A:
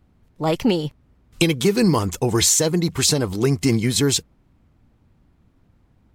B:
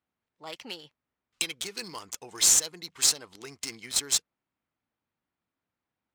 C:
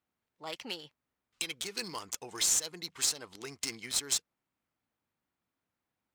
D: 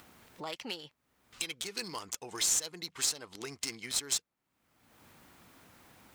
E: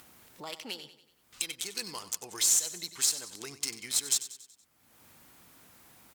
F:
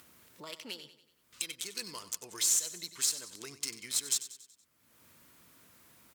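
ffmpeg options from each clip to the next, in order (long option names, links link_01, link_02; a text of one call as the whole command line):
ffmpeg -i in.wav -af "aderivative,adynamicsmooth=sensitivity=5:basefreq=2400" out.wav
ffmpeg -i in.wav -af "alimiter=limit=-17.5dB:level=0:latency=1:release=142" out.wav
ffmpeg -i in.wav -af "acompressor=mode=upward:threshold=-34dB:ratio=2.5,volume=-1dB" out.wav
ffmpeg -i in.wav -af "aemphasis=mode=production:type=cd,aecho=1:1:94|188|282|376|470:0.2|0.0998|0.0499|0.0249|0.0125,volume=-2dB" out.wav
ffmpeg -i in.wav -af "highpass=49,bandreject=frequency=790:width=5,volume=-3dB" out.wav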